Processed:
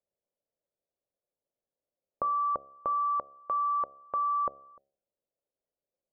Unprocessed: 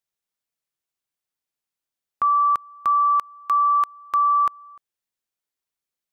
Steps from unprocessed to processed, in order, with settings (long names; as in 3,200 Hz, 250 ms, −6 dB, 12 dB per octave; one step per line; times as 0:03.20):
low-pass with resonance 560 Hz, resonance Q 4.9
hum removal 68.8 Hz, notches 11